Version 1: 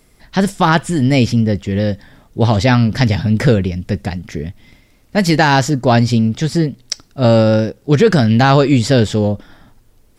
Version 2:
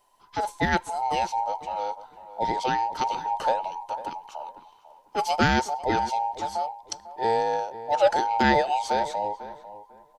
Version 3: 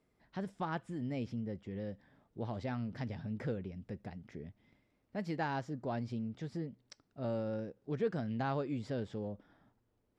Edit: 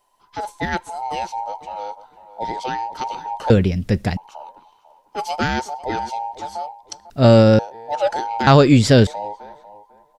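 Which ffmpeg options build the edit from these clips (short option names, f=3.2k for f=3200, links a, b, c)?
-filter_complex "[0:a]asplit=3[a][b][c];[1:a]asplit=4[d][e][f][g];[d]atrim=end=3.502[h];[a]atrim=start=3.498:end=4.172[i];[e]atrim=start=4.168:end=7.102[j];[b]atrim=start=7.098:end=7.592[k];[f]atrim=start=7.588:end=8.472[l];[c]atrim=start=8.468:end=9.072[m];[g]atrim=start=9.068[n];[h][i]acrossfade=d=0.004:c1=hsin:c2=hsin[o];[o][j]acrossfade=d=0.004:c1=hsin:c2=hsin[p];[p][k]acrossfade=d=0.004:c1=hsin:c2=hsin[q];[q][l]acrossfade=d=0.004:c1=hsin:c2=hsin[r];[r][m]acrossfade=d=0.004:c1=hsin:c2=hsin[s];[s][n]acrossfade=d=0.004:c1=hsin:c2=hsin"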